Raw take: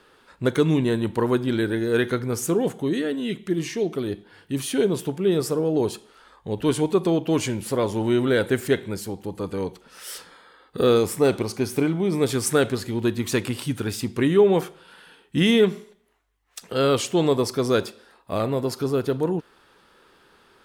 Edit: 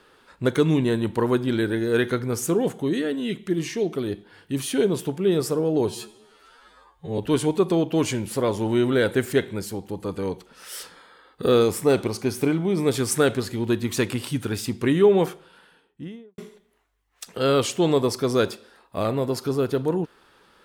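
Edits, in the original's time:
5.88–6.53 s: stretch 2×
14.54–15.73 s: studio fade out

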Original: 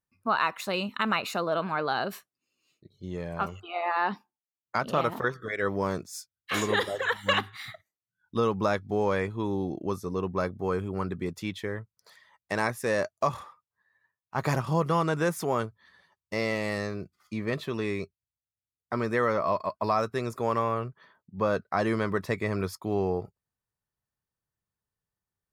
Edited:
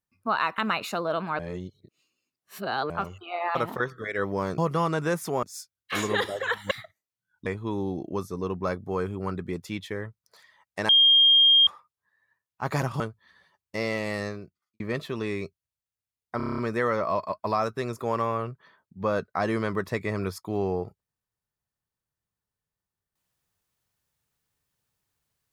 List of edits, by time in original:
0.58–1.00 s: delete
1.81–3.32 s: reverse
3.97–4.99 s: delete
7.30–7.61 s: delete
8.36–9.19 s: delete
12.62–13.40 s: bleep 3.22 kHz -14 dBFS
14.73–15.58 s: move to 6.02 s
16.86–17.38 s: fade out quadratic
18.95 s: stutter 0.03 s, 8 plays

